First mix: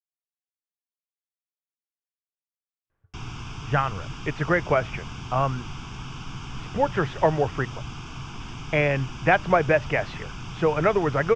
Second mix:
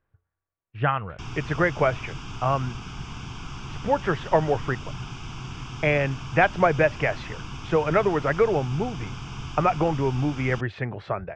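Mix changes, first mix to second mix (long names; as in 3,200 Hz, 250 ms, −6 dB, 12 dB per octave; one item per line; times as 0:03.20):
speech: entry −2.90 s
background: entry −1.95 s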